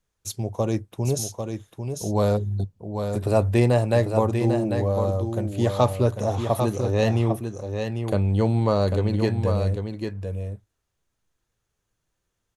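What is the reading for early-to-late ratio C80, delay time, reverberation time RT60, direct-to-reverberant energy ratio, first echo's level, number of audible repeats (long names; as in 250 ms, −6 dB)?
no reverb audible, 796 ms, no reverb audible, no reverb audible, −6.5 dB, 1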